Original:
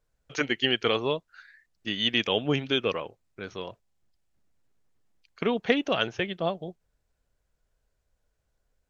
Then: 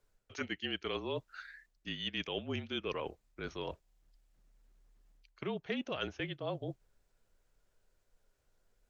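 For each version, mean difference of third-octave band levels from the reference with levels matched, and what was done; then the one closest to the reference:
5.0 dB: reversed playback
downward compressor 4 to 1, threshold −39 dBFS, peak gain reduction 19 dB
reversed playback
frequency shifter −36 Hz
level +2 dB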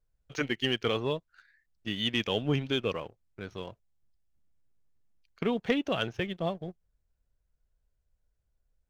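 3.0 dB: low-shelf EQ 160 Hz +11.5 dB
leveller curve on the samples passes 1
level −8.5 dB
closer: second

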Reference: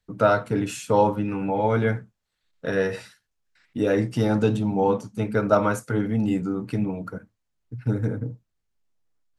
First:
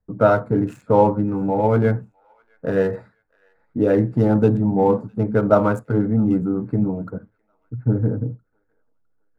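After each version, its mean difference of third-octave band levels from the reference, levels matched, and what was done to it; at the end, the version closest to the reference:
4.5 dB: adaptive Wiener filter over 15 samples
parametric band 4,900 Hz −11 dB 2.9 octaves
delay with a high-pass on its return 657 ms, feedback 36%, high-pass 1,500 Hz, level −22.5 dB
one half of a high-frequency compander decoder only
level +5.5 dB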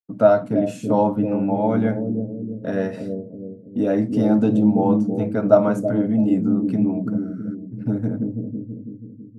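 6.5 dB: downward expander −41 dBFS
on a send: bucket-brigade delay 327 ms, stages 1,024, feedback 54%, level −4 dB
on the sum: healed spectral selection 0:07.17–0:07.52, 1,200–10,000 Hz before
hollow resonant body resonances 240/620 Hz, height 15 dB, ringing for 20 ms
level −8 dB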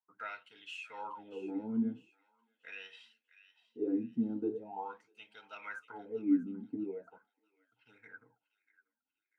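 11.5 dB: bass and treble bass −5 dB, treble +2 dB
notch comb filter 580 Hz
LFO wah 0.42 Hz 230–3,200 Hz, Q 14
on a send: delay with a high-pass on its return 642 ms, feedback 36%, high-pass 1,600 Hz, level −15 dB
on the sum: level +3 dB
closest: first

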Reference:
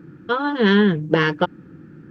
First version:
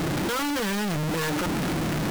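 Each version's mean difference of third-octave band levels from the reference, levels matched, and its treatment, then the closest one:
20.5 dB: sign of each sample alone
level −6 dB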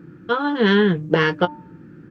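1.0 dB: double-tracking delay 17 ms −10.5 dB
hum removal 298.8 Hz, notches 4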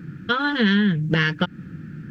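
4.0 dB: flat-topped bell 580 Hz −11.5 dB 2.3 octaves
downward compressor 4 to 1, threshold −26 dBFS, peak gain reduction 10.5 dB
level +8.5 dB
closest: second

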